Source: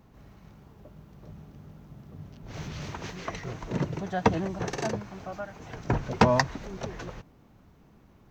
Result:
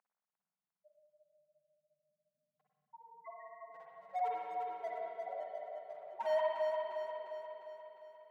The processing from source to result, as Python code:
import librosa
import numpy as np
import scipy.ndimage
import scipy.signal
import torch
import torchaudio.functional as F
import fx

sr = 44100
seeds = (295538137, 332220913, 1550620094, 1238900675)

p1 = fx.spec_topn(x, sr, count=1)
p2 = scipy.signal.lfilter(np.full(12, 1.0 / 12), 1.0, p1)
p3 = np.clip(p2, -10.0 ** (-39.0 / 20.0), 10.0 ** (-39.0 / 20.0))
p4 = p2 + F.gain(torch.from_numpy(p3), -3.5).numpy()
p5 = scipy.signal.sosfilt(scipy.signal.butter(4, 770.0, 'highpass', fs=sr, output='sos'), p4)
p6 = p5 + fx.echo_feedback(p5, sr, ms=352, feedback_pct=56, wet_db=-5.5, dry=0)
p7 = fx.rev_spring(p6, sr, rt60_s=2.0, pass_ms=(48, 55, 59), chirp_ms=30, drr_db=-3.5)
y = F.gain(torch.from_numpy(p7), 2.0).numpy()